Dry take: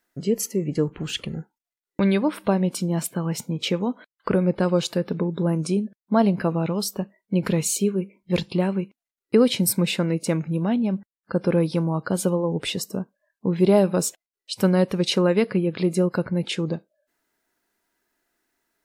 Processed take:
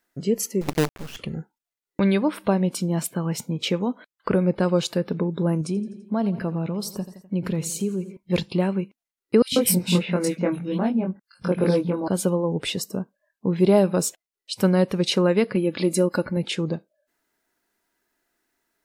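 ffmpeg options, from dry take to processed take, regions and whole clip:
-filter_complex "[0:a]asettb=1/sr,asplit=3[s0][s1][s2];[s0]atrim=end=0.614[s3];[s1]atrim=start=0.61:end=1.17,asetpts=PTS-STARTPTS,afade=t=in:d=0.004:c=qsin,afade=t=out:st=0.556:d=0.004:c=qsin,lowpass=2300,acrusher=bits=4:dc=4:mix=0:aa=0.000001[s4];[s2]atrim=start=1.166[s5];[s3][s4]acrossfade=d=0.004:c1=hsin:c2=qsin[s6];[s6][s5]acrossfade=d=0.004:c1=qsin:c2=hsin,asettb=1/sr,asplit=3[s7][s8][s9];[s7]atrim=end=5.614[s10];[s8]atrim=start=5.61:end=8.17,asetpts=PTS-STARTPTS,afade=t=in:d=0.004:c=qsin,afade=t=out:st=2.556:d=0.004:c=qsin,lowshelf=f=360:g=6.5,aecho=1:1:84|168|252|336:0.141|0.0706|0.0353|0.0177,atrim=end_sample=112896,acompressor=threshold=0.0178:ratio=1.5:attack=3.2:release=140:knee=1:detection=peak[s11];[s9]atrim=start=8.166[s12];[s10][s11]acrossfade=d=0.004:c1=hsin:c2=qsin[s13];[s13][s12]acrossfade=d=0.004:c1=qsin:c2=hsin,asettb=1/sr,asplit=3[s14][s15][s16];[s14]atrim=end=9.424[s17];[s15]atrim=start=9.42:end=12.08,asetpts=PTS-STARTPTS,afade=t=in:d=0.004:c=qsin,afade=t=out:st=2.656:d=0.004:c=qsin,asplit=2[s18][s19];[s19]adelay=22,volume=0.75[s20];[s18][s20]amix=inputs=2:normalize=0,atrim=end_sample=117306,acrossover=split=170|2500[s21][s22][s23];[s21]adelay=100[s24];[s22]adelay=140[s25];[s24][s25][s23]amix=inputs=3:normalize=0,atrim=end_sample=117306[s26];[s16]atrim=start=12.076[s27];[s17][s26]acrossfade=d=0.004:c1=hsin:c2=qsin[s28];[s28][s27]acrossfade=d=0.004:c1=qsin:c2=hsin,asettb=1/sr,asplit=3[s29][s30][s31];[s29]atrim=end=15.554[s32];[s30]atrim=start=15.55:end=16.37,asetpts=PTS-STARTPTS,afade=t=in:d=0.004:c=qsin,afade=t=out:st=0.816:d=0.004:c=qsin,highshelf=f=5000:g=9.5,aecho=1:1:3.5:0.46,atrim=end_sample=36162[s33];[s31]atrim=start=16.366[s34];[s32][s33]acrossfade=d=0.004:c1=hsin:c2=qsin[s35];[s35][s34]acrossfade=d=0.004:c1=qsin:c2=hsin"

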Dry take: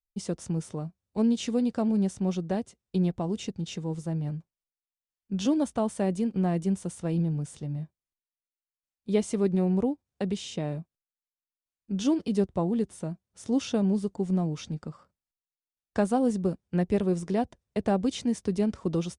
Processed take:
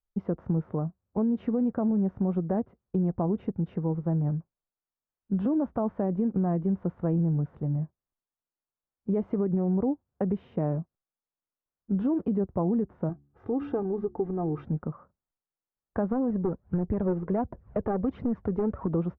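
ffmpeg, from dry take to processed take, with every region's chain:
-filter_complex "[0:a]asettb=1/sr,asplit=3[s0][s1][s2];[s0]atrim=end=13.094[s3];[s1]atrim=start=13.09:end=14.65,asetpts=PTS-STARTPTS,afade=t=in:d=0.004:c=qsin,afade=t=out:st=1.556:d=0.004:c=qsin,bandreject=f=71.46:t=h:w=4,bandreject=f=142.92:t=h:w=4,bandreject=f=214.38:t=h:w=4,bandreject=f=285.84:t=h:w=4,bandreject=f=357.3:t=h:w=4,acompressor=threshold=0.0447:ratio=6:attack=3.2:release=140:knee=1:detection=peak,aecho=1:1:2.5:0.67,atrim=end_sample=68796[s4];[s2]atrim=start=14.646[s5];[s3][s4]acrossfade=d=0.004:c1=hsin:c2=qsin[s6];[s6][s5]acrossfade=d=0.004:c1=qsin:c2=hsin,asettb=1/sr,asplit=3[s7][s8][s9];[s7]atrim=end=16.124[s10];[s8]atrim=start=16.12:end=18.88,asetpts=PTS-STARTPTS,afade=t=in:d=0.004:c=qsin,afade=t=out:st=2.756:d=0.004:c=qsin,acompressor=mode=upward:threshold=0.0158:ratio=2.5:attack=3.2:release=140:knee=2.83:detection=peak,aphaser=in_gain=1:out_gain=1:delay=2.6:decay=0.5:speed=1.4:type=triangular,aeval=exprs='clip(val(0),-1,0.0668)':c=same[s11];[s9]atrim=start=18.876[s12];[s10][s11]acrossfade=d=0.004:c1=hsin:c2=qsin[s13];[s13][s12]acrossfade=d=0.004:c1=qsin:c2=hsin,lowpass=f=1400:w=0.5412,lowpass=f=1400:w=1.3066,alimiter=limit=0.075:level=0:latency=1:release=56,acompressor=threshold=0.0447:ratio=6,volume=1.78"

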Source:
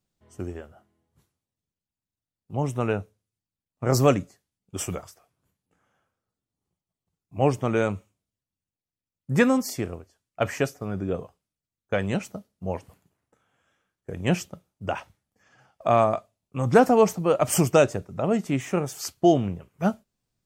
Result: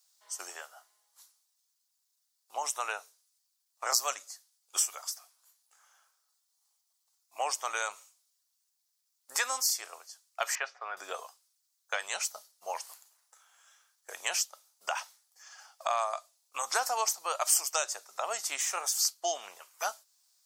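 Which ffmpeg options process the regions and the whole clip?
-filter_complex "[0:a]asettb=1/sr,asplit=3[s0][s1][s2];[s0]atrim=end=10.554[s3];[s1]atrim=start=10.55:end=10.97,asetpts=PTS-STARTPTS,afade=t=in:d=0.004:c=qsin,afade=t=out:st=0.416:d=0.004:c=qsin,lowpass=f=2500:w=0.5412,lowpass=f=2500:w=1.3066,aemphasis=mode=production:type=bsi[s4];[s2]atrim=start=10.966[s5];[s3][s4]acrossfade=d=0.004:c1=hsin:c2=qsin[s6];[s6][s5]acrossfade=d=0.004:c1=qsin:c2=hsin,highpass=f=850:w=0.5412,highpass=f=850:w=1.3066,highshelf=f=3600:t=q:w=1.5:g=9.5,acompressor=threshold=0.0112:ratio=2.5,volume=2.24"

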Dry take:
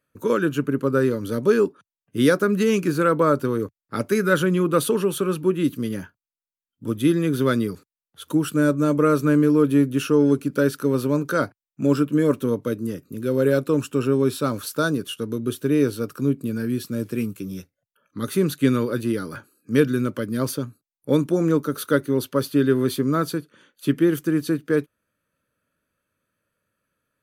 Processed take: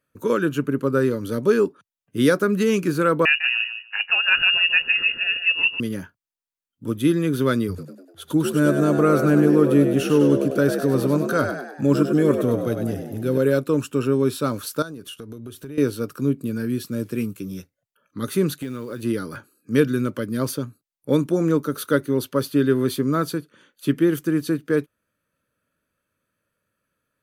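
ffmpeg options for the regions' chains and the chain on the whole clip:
-filter_complex "[0:a]asettb=1/sr,asplit=3[s0][s1][s2];[s0]atrim=end=3.254[s3];[s1]atrim=start=3.25:end=5.8,asetpts=PTS-STARTPTS,afade=t=in:d=0.004:c=qsin,afade=t=out:st=2.546:d=0.004:c=qsin,lowpass=f=2600:t=q:w=0.5098,lowpass=f=2600:t=q:w=0.6013,lowpass=f=2600:t=q:w=0.9,lowpass=f=2600:t=q:w=2.563,afreqshift=-3000,equalizer=f=180:t=o:w=1.1:g=4,aecho=1:1:150|300:0.355|0.0568,atrim=end_sample=112455[s4];[s2]atrim=start=5.796[s5];[s3][s4]acrossfade=d=0.004:c1=hsin:c2=qsin[s6];[s6][s5]acrossfade=d=0.004:c1=qsin:c2=hsin,asettb=1/sr,asplit=3[s7][s8][s9];[s7]atrim=end=7.684[s10];[s8]atrim=start=7.68:end=13.38,asetpts=PTS-STARTPTS,afade=t=in:d=0.004:c=qsin,afade=t=out:st=5.696:d=0.004:c=qsin,equalizer=f=91:t=o:w=0.54:g=12.5,asplit=7[s11][s12][s13][s14][s15][s16][s17];[s12]adelay=99,afreqshift=61,volume=0.447[s18];[s13]adelay=198,afreqshift=122,volume=0.229[s19];[s14]adelay=297,afreqshift=183,volume=0.116[s20];[s15]adelay=396,afreqshift=244,volume=0.0596[s21];[s16]adelay=495,afreqshift=305,volume=0.0302[s22];[s17]adelay=594,afreqshift=366,volume=0.0155[s23];[s11][s18][s19][s20][s21][s22][s23]amix=inputs=7:normalize=0,atrim=end_sample=251370[s24];[s9]atrim=start=13.376[s25];[s10][s24]acrossfade=d=0.004:c1=hsin:c2=qsin[s26];[s26][s25]acrossfade=d=0.004:c1=qsin:c2=hsin,asettb=1/sr,asplit=3[s27][s28][s29];[s27]atrim=end=14.824[s30];[s28]atrim=start=14.82:end=15.78,asetpts=PTS-STARTPTS,afade=t=in:d=0.004:c=qsin,afade=t=out:st=0.956:d=0.004:c=qsin,asubboost=boost=10:cutoff=100,acompressor=threshold=0.0224:ratio=5:attack=3.2:release=140:knee=1:detection=peak[s31];[s29]atrim=start=15.776[s32];[s30][s31]acrossfade=d=0.004:c1=hsin:c2=qsin[s33];[s33][s32]acrossfade=d=0.004:c1=qsin:c2=hsin,asettb=1/sr,asplit=3[s34][s35][s36];[s34]atrim=end=18.584[s37];[s35]atrim=start=18.58:end=19.03,asetpts=PTS-STARTPTS,afade=t=in:d=0.004:c=qsin,afade=t=out:st=0.446:d=0.004:c=qsin,acompressor=threshold=0.0398:ratio=4:attack=3.2:release=140:knee=1:detection=peak,acrusher=bits=7:mode=log:mix=0:aa=0.000001[s38];[s36]atrim=start=19.026[s39];[s37][s38]acrossfade=d=0.004:c1=hsin:c2=qsin[s40];[s40][s39]acrossfade=d=0.004:c1=qsin:c2=hsin"

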